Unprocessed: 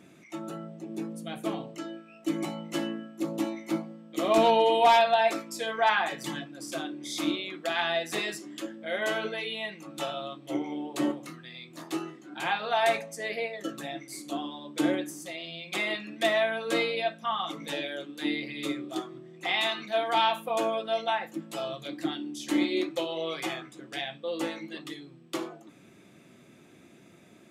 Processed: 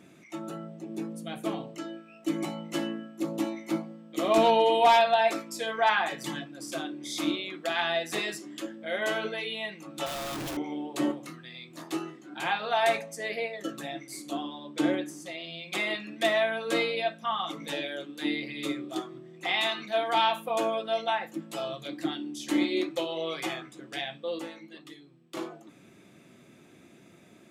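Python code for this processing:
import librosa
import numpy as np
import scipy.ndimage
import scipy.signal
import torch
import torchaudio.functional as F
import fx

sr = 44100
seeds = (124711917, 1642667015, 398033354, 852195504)

y = fx.clip_1bit(x, sr, at=(10.06, 10.57))
y = fx.high_shelf(y, sr, hz=11000.0, db=-12.0, at=(14.43, 15.5))
y = fx.edit(y, sr, fx.clip_gain(start_s=24.39, length_s=0.98, db=-7.5), tone=tone)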